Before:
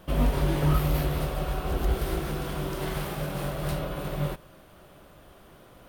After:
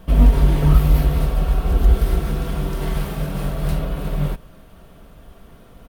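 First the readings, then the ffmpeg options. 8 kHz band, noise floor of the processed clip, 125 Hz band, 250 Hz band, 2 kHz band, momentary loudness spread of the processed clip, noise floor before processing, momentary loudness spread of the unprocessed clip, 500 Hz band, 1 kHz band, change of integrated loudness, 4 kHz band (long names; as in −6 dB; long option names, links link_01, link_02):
+2.0 dB, −46 dBFS, +9.0 dB, +6.5 dB, +2.0 dB, 10 LU, −53 dBFS, 8 LU, +3.0 dB, +2.5 dB, +9.0 dB, +2.0 dB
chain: -af "lowshelf=frequency=180:gain=11.5,aecho=1:1:4.4:0.39,volume=1.5dB"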